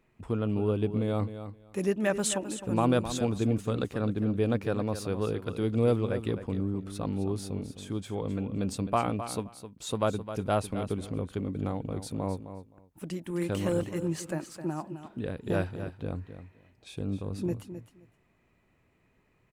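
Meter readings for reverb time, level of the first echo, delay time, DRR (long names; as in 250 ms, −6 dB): no reverb audible, −11.0 dB, 261 ms, no reverb audible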